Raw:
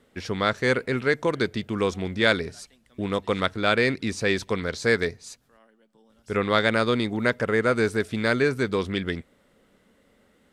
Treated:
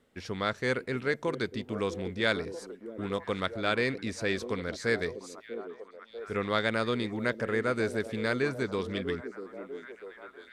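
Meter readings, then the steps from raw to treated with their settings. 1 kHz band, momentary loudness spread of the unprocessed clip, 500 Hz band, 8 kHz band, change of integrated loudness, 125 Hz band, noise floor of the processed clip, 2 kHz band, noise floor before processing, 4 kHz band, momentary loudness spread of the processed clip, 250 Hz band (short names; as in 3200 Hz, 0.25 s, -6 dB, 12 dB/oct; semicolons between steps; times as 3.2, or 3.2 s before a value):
-7.0 dB, 10 LU, -6.5 dB, -7.0 dB, -7.0 dB, -7.0 dB, -55 dBFS, -7.0 dB, -63 dBFS, -7.0 dB, 14 LU, -6.5 dB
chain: delay with a stepping band-pass 0.644 s, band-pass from 330 Hz, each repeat 0.7 oct, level -7.5 dB; gain -7 dB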